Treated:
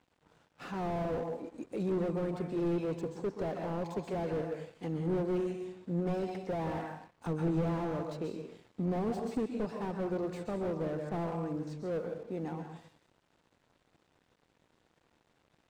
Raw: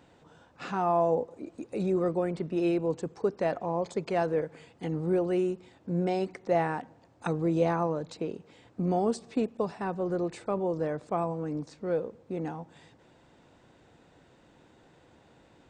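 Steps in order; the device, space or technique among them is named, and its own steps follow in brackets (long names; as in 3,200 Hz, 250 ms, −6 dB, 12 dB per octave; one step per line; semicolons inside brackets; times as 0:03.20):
dense smooth reverb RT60 0.62 s, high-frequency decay 1×, pre-delay 115 ms, DRR 6 dB
early transistor amplifier (dead-zone distortion −57 dBFS; slew-rate limiting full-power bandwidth 19 Hz)
level −3.5 dB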